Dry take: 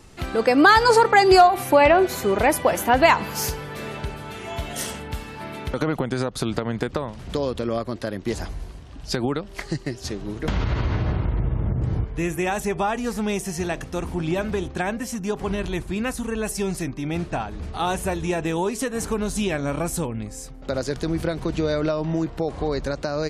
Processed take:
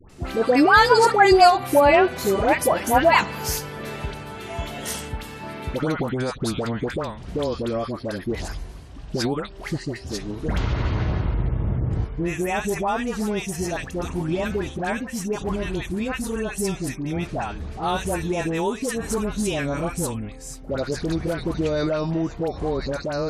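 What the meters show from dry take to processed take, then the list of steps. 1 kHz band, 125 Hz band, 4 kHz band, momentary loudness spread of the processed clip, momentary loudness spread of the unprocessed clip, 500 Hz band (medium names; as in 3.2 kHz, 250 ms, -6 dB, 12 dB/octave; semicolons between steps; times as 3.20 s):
0.0 dB, 0.0 dB, 0.0 dB, 15 LU, 16 LU, 0.0 dB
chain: phase dispersion highs, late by 97 ms, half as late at 1.1 kHz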